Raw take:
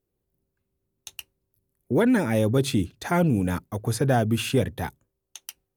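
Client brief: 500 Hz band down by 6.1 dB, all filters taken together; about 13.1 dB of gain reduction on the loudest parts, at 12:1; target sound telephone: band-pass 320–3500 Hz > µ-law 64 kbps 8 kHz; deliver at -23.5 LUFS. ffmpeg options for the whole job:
-af "equalizer=f=500:t=o:g=-6.5,acompressor=threshold=0.0251:ratio=12,highpass=320,lowpass=3500,volume=8.91" -ar 8000 -c:a pcm_mulaw

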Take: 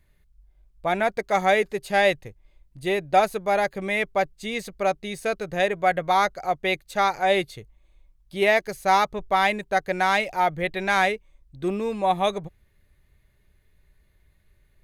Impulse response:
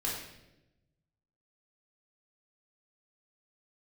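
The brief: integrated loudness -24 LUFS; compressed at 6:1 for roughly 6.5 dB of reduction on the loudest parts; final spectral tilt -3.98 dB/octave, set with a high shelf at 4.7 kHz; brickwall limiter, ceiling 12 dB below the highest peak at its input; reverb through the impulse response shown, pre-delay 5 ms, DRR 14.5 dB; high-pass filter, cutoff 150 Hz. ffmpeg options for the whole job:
-filter_complex "[0:a]highpass=150,highshelf=f=4700:g=5,acompressor=threshold=0.1:ratio=6,alimiter=limit=0.0708:level=0:latency=1,asplit=2[s0][s1];[1:a]atrim=start_sample=2205,adelay=5[s2];[s1][s2]afir=irnorm=-1:irlink=0,volume=0.112[s3];[s0][s3]amix=inputs=2:normalize=0,volume=2.82"

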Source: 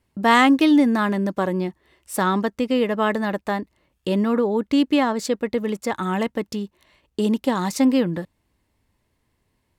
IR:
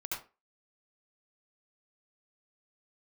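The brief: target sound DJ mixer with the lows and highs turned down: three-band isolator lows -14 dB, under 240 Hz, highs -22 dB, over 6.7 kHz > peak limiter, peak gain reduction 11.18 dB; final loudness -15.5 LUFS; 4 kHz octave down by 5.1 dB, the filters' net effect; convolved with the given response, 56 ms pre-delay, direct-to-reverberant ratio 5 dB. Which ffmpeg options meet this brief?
-filter_complex "[0:a]equalizer=f=4000:t=o:g=-6.5,asplit=2[s0][s1];[1:a]atrim=start_sample=2205,adelay=56[s2];[s1][s2]afir=irnorm=-1:irlink=0,volume=0.447[s3];[s0][s3]amix=inputs=2:normalize=0,acrossover=split=240 6700:gain=0.2 1 0.0794[s4][s5][s6];[s4][s5][s6]amix=inputs=3:normalize=0,volume=2.99,alimiter=limit=0.562:level=0:latency=1"

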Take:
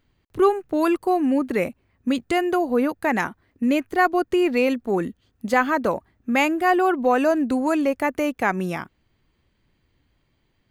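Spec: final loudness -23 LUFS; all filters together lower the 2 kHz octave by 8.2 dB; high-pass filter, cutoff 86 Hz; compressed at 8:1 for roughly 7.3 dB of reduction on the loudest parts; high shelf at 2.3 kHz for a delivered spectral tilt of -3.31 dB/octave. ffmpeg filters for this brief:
-af "highpass=86,equalizer=f=2000:t=o:g=-8.5,highshelf=f=2300:g=-4.5,acompressor=threshold=0.0794:ratio=8,volume=1.78"

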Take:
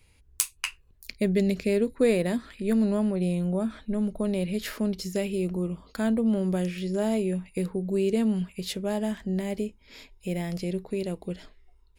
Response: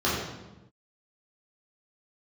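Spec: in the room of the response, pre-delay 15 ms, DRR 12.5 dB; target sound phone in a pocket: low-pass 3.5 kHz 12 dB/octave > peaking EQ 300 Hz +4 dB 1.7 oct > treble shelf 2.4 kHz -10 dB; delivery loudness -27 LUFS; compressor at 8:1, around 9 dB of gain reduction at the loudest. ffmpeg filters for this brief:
-filter_complex "[0:a]acompressor=threshold=0.0501:ratio=8,asplit=2[s0][s1];[1:a]atrim=start_sample=2205,adelay=15[s2];[s1][s2]afir=irnorm=-1:irlink=0,volume=0.0447[s3];[s0][s3]amix=inputs=2:normalize=0,lowpass=3500,equalizer=f=300:t=o:w=1.7:g=4,highshelf=f=2400:g=-10,volume=1.19"

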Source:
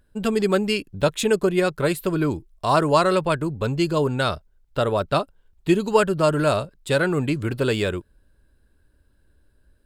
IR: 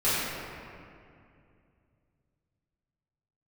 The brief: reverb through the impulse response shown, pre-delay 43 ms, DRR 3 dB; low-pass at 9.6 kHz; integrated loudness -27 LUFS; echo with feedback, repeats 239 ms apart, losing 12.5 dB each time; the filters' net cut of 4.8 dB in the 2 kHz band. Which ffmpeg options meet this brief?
-filter_complex "[0:a]lowpass=9600,equalizer=f=2000:t=o:g=-7.5,aecho=1:1:239|478|717:0.237|0.0569|0.0137,asplit=2[s0][s1];[1:a]atrim=start_sample=2205,adelay=43[s2];[s1][s2]afir=irnorm=-1:irlink=0,volume=0.133[s3];[s0][s3]amix=inputs=2:normalize=0,volume=0.501"

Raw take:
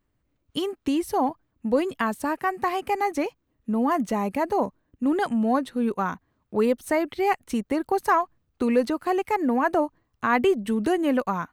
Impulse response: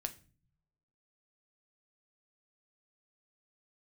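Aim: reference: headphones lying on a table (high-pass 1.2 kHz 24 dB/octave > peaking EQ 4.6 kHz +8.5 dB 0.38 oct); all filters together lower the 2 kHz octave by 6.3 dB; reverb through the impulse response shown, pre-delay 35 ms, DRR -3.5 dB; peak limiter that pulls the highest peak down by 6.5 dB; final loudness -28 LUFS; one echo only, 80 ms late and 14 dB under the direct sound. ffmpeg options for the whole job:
-filter_complex "[0:a]equalizer=f=2000:t=o:g=-8,alimiter=limit=0.133:level=0:latency=1,aecho=1:1:80:0.2,asplit=2[s0][s1];[1:a]atrim=start_sample=2205,adelay=35[s2];[s1][s2]afir=irnorm=-1:irlink=0,volume=1.68[s3];[s0][s3]amix=inputs=2:normalize=0,highpass=f=1200:w=0.5412,highpass=f=1200:w=1.3066,equalizer=f=4600:t=o:w=0.38:g=8.5,volume=2.11"

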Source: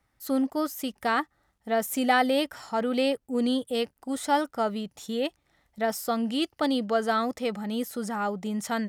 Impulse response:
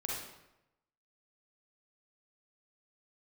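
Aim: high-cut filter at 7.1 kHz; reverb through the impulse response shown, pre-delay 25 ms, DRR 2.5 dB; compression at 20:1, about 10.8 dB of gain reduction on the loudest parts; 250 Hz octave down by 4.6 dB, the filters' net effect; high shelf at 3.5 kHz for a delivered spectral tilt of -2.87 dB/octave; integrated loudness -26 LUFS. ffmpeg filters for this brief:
-filter_complex "[0:a]lowpass=7100,equalizer=f=250:t=o:g=-5,highshelf=f=3500:g=-6.5,acompressor=threshold=0.0355:ratio=20,asplit=2[s0][s1];[1:a]atrim=start_sample=2205,adelay=25[s2];[s1][s2]afir=irnorm=-1:irlink=0,volume=0.562[s3];[s0][s3]amix=inputs=2:normalize=0,volume=2.51"

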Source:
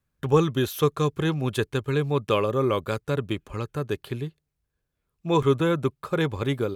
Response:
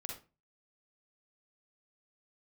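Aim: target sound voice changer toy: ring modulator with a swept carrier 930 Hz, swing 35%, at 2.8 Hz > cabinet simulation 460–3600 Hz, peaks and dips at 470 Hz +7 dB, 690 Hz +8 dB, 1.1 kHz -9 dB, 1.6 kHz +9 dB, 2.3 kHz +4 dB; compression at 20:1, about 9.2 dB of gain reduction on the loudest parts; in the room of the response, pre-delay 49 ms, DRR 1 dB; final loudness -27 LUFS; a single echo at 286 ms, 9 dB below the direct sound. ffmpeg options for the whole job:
-filter_complex "[0:a]acompressor=threshold=0.0708:ratio=20,aecho=1:1:286:0.355,asplit=2[s0][s1];[1:a]atrim=start_sample=2205,adelay=49[s2];[s1][s2]afir=irnorm=-1:irlink=0,volume=1.12[s3];[s0][s3]amix=inputs=2:normalize=0,aeval=exprs='val(0)*sin(2*PI*930*n/s+930*0.35/2.8*sin(2*PI*2.8*n/s))':c=same,highpass=460,equalizer=f=470:t=q:w=4:g=7,equalizer=f=690:t=q:w=4:g=8,equalizer=f=1100:t=q:w=4:g=-9,equalizer=f=1600:t=q:w=4:g=9,equalizer=f=2300:t=q:w=4:g=4,lowpass=f=3600:w=0.5412,lowpass=f=3600:w=1.3066,volume=0.891"

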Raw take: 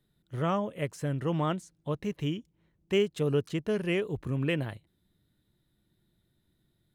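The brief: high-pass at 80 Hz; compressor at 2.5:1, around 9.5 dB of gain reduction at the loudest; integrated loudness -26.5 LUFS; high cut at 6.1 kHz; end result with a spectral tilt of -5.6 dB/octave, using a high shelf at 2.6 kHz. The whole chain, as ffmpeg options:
-af "highpass=80,lowpass=6100,highshelf=f=2600:g=4.5,acompressor=threshold=0.0158:ratio=2.5,volume=3.98"

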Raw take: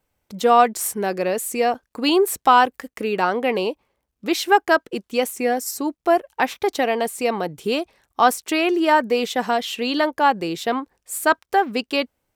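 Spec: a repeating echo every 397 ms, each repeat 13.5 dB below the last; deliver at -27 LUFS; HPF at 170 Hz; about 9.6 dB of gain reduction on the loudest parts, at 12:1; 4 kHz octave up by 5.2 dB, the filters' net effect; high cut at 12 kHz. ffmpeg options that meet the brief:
-af "highpass=170,lowpass=12000,equalizer=f=4000:t=o:g=7,acompressor=threshold=0.126:ratio=12,aecho=1:1:397|794:0.211|0.0444,volume=0.75"

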